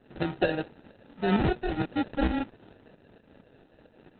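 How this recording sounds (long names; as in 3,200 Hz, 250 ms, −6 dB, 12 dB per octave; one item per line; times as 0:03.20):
tremolo saw up 4.4 Hz, depth 55%
aliases and images of a low sample rate 1,100 Hz, jitter 0%
Opus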